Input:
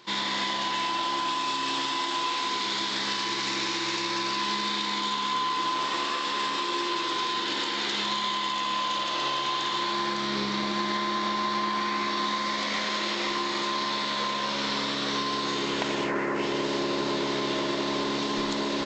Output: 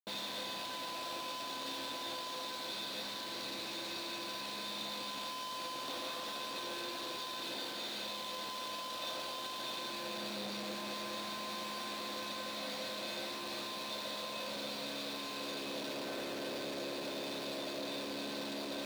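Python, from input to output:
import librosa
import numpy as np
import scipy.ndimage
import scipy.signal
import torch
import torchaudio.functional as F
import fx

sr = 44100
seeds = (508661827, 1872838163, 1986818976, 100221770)

y = fx.rattle_buzz(x, sr, strikes_db=-42.0, level_db=-21.0)
y = fx.high_shelf(y, sr, hz=2800.0, db=-4.5)
y = fx.schmitt(y, sr, flips_db=-41.0)
y = fx.graphic_eq_15(y, sr, hz=(250, 630, 4000), db=(8, 11, 12))
y = fx.rider(y, sr, range_db=10, speed_s=0.5)
y = scipy.signal.sosfilt(scipy.signal.butter(2, 95.0, 'highpass', fs=sr, output='sos'), y)
y = fx.comb_fb(y, sr, f0_hz=510.0, decay_s=0.27, harmonics='odd', damping=0.0, mix_pct=80)
y = y * librosa.db_to_amplitude(-4.5)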